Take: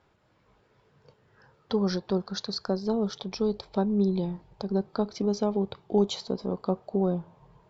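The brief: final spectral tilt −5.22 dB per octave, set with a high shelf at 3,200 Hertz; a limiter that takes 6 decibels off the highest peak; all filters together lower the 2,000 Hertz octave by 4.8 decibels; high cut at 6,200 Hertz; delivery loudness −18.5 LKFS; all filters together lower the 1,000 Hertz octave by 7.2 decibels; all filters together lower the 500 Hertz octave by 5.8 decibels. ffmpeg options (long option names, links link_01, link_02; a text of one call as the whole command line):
ffmpeg -i in.wav -af "lowpass=6200,equalizer=frequency=500:width_type=o:gain=-6.5,equalizer=frequency=1000:width_type=o:gain=-6.5,equalizer=frequency=2000:width_type=o:gain=-4.5,highshelf=frequency=3200:gain=4,volume=14.5dB,alimiter=limit=-8.5dB:level=0:latency=1" out.wav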